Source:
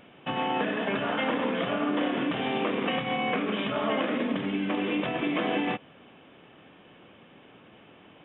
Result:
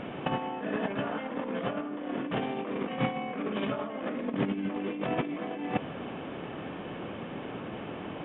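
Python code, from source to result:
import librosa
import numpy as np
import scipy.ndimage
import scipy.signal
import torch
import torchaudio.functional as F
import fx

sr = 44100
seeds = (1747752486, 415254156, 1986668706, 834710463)

y = fx.over_compress(x, sr, threshold_db=-35.0, ratio=-0.5)
y = fx.lowpass(y, sr, hz=1300.0, slope=6)
y = y * 10.0 ** (6.5 / 20.0)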